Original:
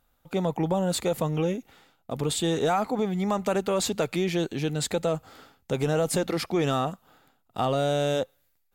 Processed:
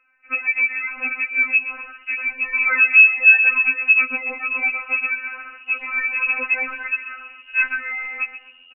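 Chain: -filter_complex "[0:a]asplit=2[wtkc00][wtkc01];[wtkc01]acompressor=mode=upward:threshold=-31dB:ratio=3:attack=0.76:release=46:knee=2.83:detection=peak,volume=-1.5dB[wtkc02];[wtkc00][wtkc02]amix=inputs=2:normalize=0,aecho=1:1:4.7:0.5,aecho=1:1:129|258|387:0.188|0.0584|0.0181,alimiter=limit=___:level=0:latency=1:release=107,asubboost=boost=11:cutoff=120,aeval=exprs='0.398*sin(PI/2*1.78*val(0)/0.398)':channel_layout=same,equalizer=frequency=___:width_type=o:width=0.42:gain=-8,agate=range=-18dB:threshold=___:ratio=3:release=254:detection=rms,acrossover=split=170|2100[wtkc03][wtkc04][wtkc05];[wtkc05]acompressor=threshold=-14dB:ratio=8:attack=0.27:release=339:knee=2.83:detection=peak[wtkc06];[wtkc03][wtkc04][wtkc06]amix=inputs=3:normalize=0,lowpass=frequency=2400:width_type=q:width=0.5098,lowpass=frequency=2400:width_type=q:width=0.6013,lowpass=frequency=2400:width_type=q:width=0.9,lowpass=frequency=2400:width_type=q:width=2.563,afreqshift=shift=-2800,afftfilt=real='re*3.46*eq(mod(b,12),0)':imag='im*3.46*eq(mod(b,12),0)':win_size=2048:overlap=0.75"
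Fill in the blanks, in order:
-15dB, 300, -26dB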